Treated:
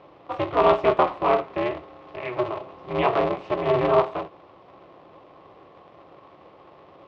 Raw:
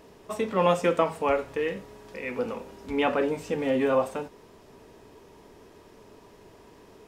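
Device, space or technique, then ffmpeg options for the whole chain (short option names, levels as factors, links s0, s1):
ring modulator pedal into a guitar cabinet: -af "aeval=exprs='val(0)*sgn(sin(2*PI*120*n/s))':c=same,highpass=93,equalizer=f=240:t=q:w=4:g=-9,equalizer=f=380:t=q:w=4:g=5,equalizer=f=670:t=q:w=4:g=7,equalizer=f=1100:t=q:w=4:g=9,equalizer=f=1600:t=q:w=4:g=-5,lowpass=f=3600:w=0.5412,lowpass=f=3600:w=1.3066"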